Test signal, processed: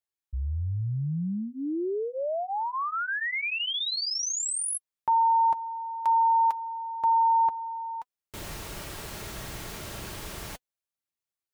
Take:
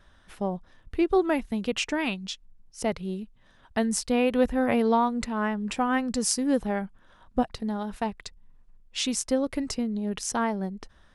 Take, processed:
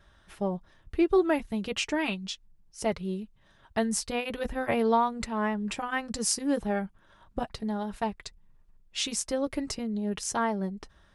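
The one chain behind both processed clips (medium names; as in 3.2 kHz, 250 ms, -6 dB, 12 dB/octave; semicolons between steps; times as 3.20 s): comb of notches 250 Hz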